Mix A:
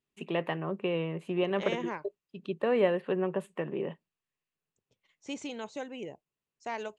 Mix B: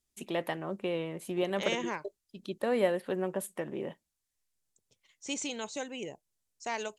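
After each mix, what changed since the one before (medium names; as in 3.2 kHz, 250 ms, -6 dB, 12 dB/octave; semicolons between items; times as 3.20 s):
first voice: remove cabinet simulation 120–9400 Hz, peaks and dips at 160 Hz +8 dB, 420 Hz +6 dB, 1.1 kHz +6 dB, 1.8 kHz +3 dB, 2.7 kHz +10 dB, 5.6 kHz -4 dB; master: add peaking EQ 9.2 kHz +14 dB 2.2 oct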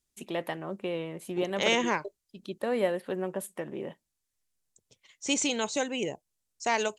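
second voice +8.0 dB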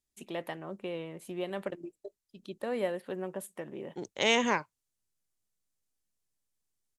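first voice -4.5 dB; second voice: entry +2.60 s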